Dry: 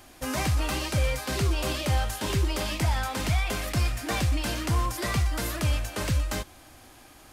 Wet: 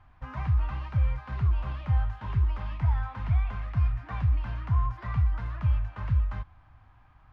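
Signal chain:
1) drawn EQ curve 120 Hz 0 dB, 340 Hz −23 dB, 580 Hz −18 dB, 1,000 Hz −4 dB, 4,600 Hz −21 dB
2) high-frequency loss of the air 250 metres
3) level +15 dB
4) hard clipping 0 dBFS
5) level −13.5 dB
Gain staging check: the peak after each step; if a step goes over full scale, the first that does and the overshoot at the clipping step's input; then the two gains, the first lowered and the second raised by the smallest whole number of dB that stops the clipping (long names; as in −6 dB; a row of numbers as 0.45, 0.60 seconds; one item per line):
−17.0, −17.0, −2.0, −2.0, −15.5 dBFS
no step passes full scale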